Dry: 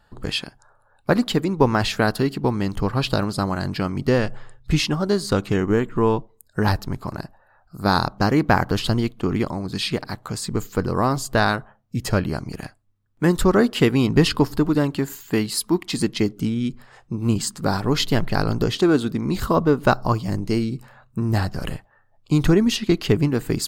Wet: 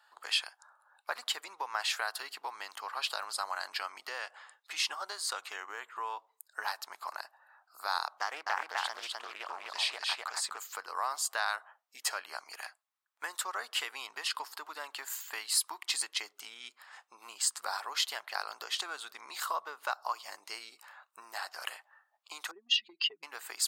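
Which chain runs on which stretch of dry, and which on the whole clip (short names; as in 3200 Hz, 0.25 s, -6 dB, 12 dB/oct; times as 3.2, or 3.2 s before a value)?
8.21–10.58 high shelf 5600 Hz -5.5 dB + echo 0.253 s -3.5 dB + Doppler distortion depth 0.36 ms
22.51–23.23 spectral contrast raised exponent 2.3 + HPF 57 Hz + bell 3100 Hz +9.5 dB 2.4 oct
whole clip: dynamic EQ 8500 Hz, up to +4 dB, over -46 dBFS, Q 2.1; compressor, threshold -22 dBFS; HPF 830 Hz 24 dB/oct; gain -2 dB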